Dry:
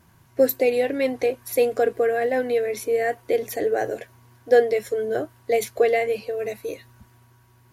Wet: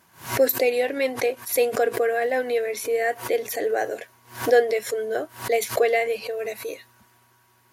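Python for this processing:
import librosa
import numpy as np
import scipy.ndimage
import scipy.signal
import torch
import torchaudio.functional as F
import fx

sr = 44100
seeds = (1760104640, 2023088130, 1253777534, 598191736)

y = fx.highpass(x, sr, hz=600.0, slope=6)
y = fx.pre_swell(y, sr, db_per_s=150.0)
y = F.gain(torch.from_numpy(y), 2.5).numpy()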